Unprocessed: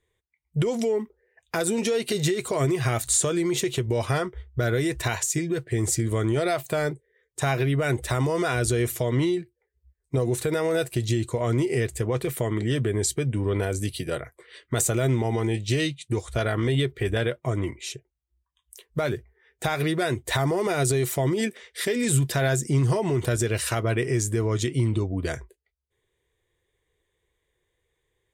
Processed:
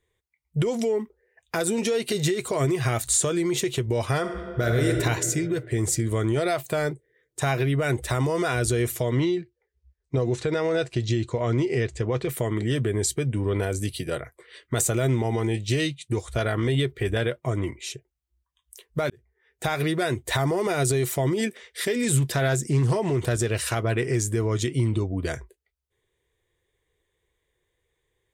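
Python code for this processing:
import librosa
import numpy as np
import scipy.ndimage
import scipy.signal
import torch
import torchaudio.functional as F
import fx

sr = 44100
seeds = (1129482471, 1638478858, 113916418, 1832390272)

y = fx.reverb_throw(x, sr, start_s=4.19, length_s=0.7, rt60_s=2.3, drr_db=1.5)
y = fx.lowpass(y, sr, hz=6500.0, slope=24, at=(9.19, 12.29))
y = fx.doppler_dist(y, sr, depth_ms=0.17, at=(22.16, 24.16))
y = fx.edit(y, sr, fx.fade_in_span(start_s=19.1, length_s=0.59), tone=tone)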